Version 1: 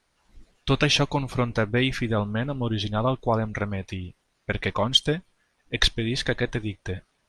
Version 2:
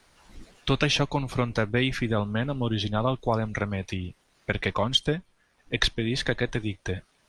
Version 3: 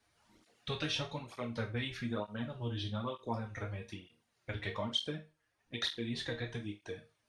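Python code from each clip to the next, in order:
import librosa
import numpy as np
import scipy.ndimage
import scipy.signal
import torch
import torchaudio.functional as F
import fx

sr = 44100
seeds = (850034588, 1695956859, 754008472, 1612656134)

y1 = fx.band_squash(x, sr, depth_pct=40)
y1 = F.gain(torch.from_numpy(y1), -1.5).numpy()
y2 = fx.resonator_bank(y1, sr, root=39, chord='sus4', decay_s=0.29)
y2 = fx.dynamic_eq(y2, sr, hz=3800.0, q=3.9, threshold_db=-57.0, ratio=4.0, max_db=5)
y2 = fx.flanger_cancel(y2, sr, hz=1.1, depth_ms=5.7)
y2 = F.gain(torch.from_numpy(y2), 1.0).numpy()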